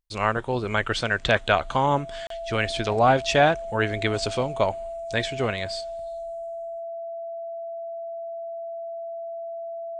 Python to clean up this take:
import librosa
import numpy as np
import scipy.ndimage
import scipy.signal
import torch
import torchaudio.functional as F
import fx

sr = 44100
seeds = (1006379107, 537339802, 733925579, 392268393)

y = fx.notch(x, sr, hz=670.0, q=30.0)
y = fx.fix_interpolate(y, sr, at_s=(2.27,), length_ms=33.0)